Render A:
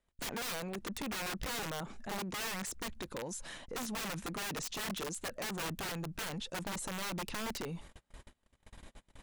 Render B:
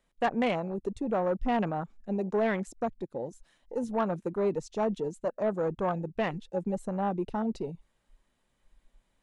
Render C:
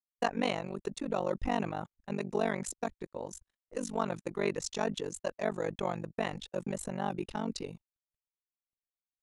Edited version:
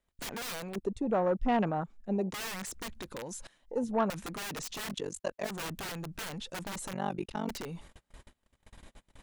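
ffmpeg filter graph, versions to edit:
ffmpeg -i take0.wav -i take1.wav -i take2.wav -filter_complex "[1:a]asplit=2[link_01][link_02];[2:a]asplit=2[link_03][link_04];[0:a]asplit=5[link_05][link_06][link_07][link_08][link_09];[link_05]atrim=end=0.762[link_10];[link_01]atrim=start=0.758:end=2.322[link_11];[link_06]atrim=start=2.318:end=3.472[link_12];[link_02]atrim=start=3.468:end=4.102[link_13];[link_07]atrim=start=4.098:end=4.94[link_14];[link_03]atrim=start=4.88:end=5.49[link_15];[link_08]atrim=start=5.43:end=6.932[link_16];[link_04]atrim=start=6.928:end=7.492[link_17];[link_09]atrim=start=7.488[link_18];[link_10][link_11]acrossfade=duration=0.004:curve1=hsin:curve2=hsin[link_19];[link_19][link_12]acrossfade=duration=0.004:curve1=hsin:curve2=hsin[link_20];[link_20][link_13]acrossfade=duration=0.004:curve1=hsin:curve2=hsin[link_21];[link_21][link_14]acrossfade=duration=0.004:curve1=hsin:curve2=hsin[link_22];[link_22][link_15]acrossfade=duration=0.06:curve1=tri:curve2=tri[link_23];[link_23][link_16]acrossfade=duration=0.06:curve1=tri:curve2=tri[link_24];[link_24][link_17]acrossfade=duration=0.004:curve1=hsin:curve2=hsin[link_25];[link_25][link_18]acrossfade=duration=0.004:curve1=hsin:curve2=hsin" out.wav

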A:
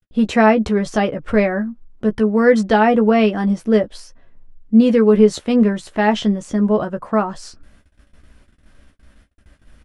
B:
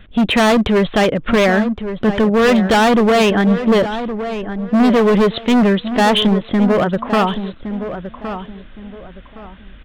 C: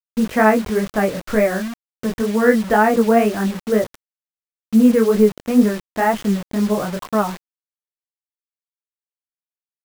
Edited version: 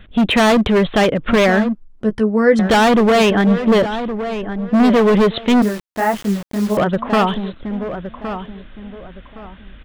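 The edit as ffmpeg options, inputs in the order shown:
ffmpeg -i take0.wav -i take1.wav -i take2.wav -filter_complex "[1:a]asplit=3[link_01][link_02][link_03];[link_01]atrim=end=1.752[link_04];[0:a]atrim=start=1.748:end=2.592[link_05];[link_02]atrim=start=2.588:end=5.622[link_06];[2:a]atrim=start=5.618:end=6.772[link_07];[link_03]atrim=start=6.768[link_08];[link_04][link_05]acrossfade=duration=0.004:curve1=hsin:curve2=hsin[link_09];[link_09][link_06]acrossfade=duration=0.004:curve1=hsin:curve2=hsin[link_10];[link_10][link_07]acrossfade=duration=0.004:curve1=hsin:curve2=hsin[link_11];[link_11][link_08]acrossfade=duration=0.004:curve1=hsin:curve2=hsin" out.wav

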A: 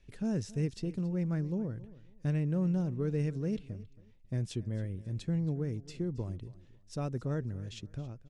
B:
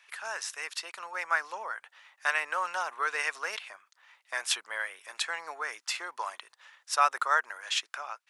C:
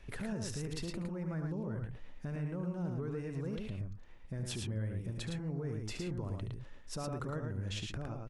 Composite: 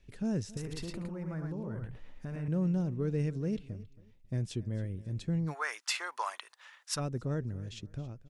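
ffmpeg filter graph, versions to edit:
ffmpeg -i take0.wav -i take1.wav -i take2.wav -filter_complex "[0:a]asplit=3[link_01][link_02][link_03];[link_01]atrim=end=0.572[link_04];[2:a]atrim=start=0.568:end=2.482[link_05];[link_02]atrim=start=2.478:end=5.55[link_06];[1:a]atrim=start=5.45:end=7.01[link_07];[link_03]atrim=start=6.91[link_08];[link_04][link_05]acrossfade=duration=0.004:curve1=hsin:curve2=hsin[link_09];[link_09][link_06]acrossfade=duration=0.004:curve1=hsin:curve2=hsin[link_10];[link_10][link_07]acrossfade=duration=0.1:curve1=tri:curve2=tri[link_11];[link_11][link_08]acrossfade=duration=0.1:curve1=tri:curve2=tri" out.wav

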